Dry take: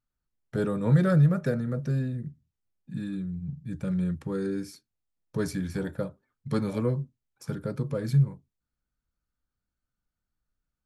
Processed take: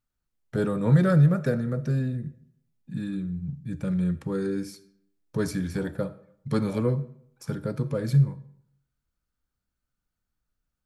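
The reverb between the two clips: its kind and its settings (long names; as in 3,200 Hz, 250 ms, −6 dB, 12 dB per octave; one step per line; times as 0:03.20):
comb and all-pass reverb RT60 0.71 s, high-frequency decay 0.75×, pre-delay 10 ms, DRR 15.5 dB
level +2 dB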